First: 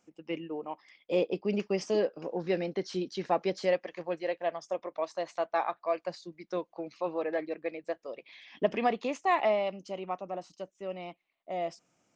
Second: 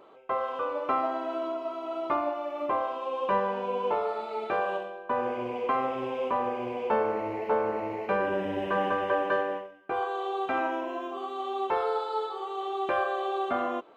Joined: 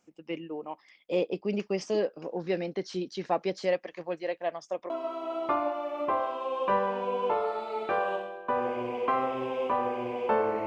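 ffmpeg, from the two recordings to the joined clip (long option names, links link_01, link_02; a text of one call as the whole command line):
ffmpeg -i cue0.wav -i cue1.wav -filter_complex "[0:a]apad=whole_dur=10.66,atrim=end=10.66,atrim=end=4.902[link_01];[1:a]atrim=start=1.508:end=7.27[link_02];[link_01][link_02]acrossfade=duration=0.004:curve1=hsin:curve2=hsin" out.wav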